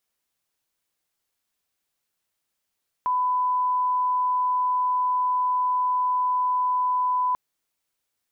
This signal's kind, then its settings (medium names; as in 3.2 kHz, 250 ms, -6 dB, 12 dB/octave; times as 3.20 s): line-up tone -20 dBFS 4.29 s